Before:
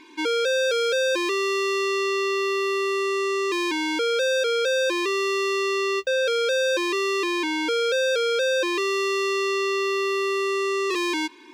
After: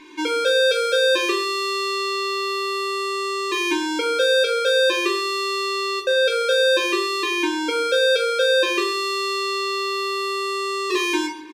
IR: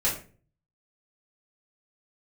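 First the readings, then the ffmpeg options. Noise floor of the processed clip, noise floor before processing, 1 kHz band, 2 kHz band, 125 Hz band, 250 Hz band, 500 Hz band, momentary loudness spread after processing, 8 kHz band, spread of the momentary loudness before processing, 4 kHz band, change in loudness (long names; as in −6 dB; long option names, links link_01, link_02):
−25 dBFS, −26 dBFS, +3.5 dB, +3.0 dB, can't be measured, +1.0 dB, +1.5 dB, 6 LU, +2.0 dB, 2 LU, +5.5 dB, +2.5 dB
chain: -filter_complex "[0:a]asplit=2[link_01][link_02];[link_02]adelay=14,volume=-10dB[link_03];[link_01][link_03]amix=inputs=2:normalize=0,asplit=2[link_04][link_05];[1:a]atrim=start_sample=2205,asetrate=32193,aresample=44100[link_06];[link_05][link_06]afir=irnorm=-1:irlink=0,volume=-11.5dB[link_07];[link_04][link_07]amix=inputs=2:normalize=0"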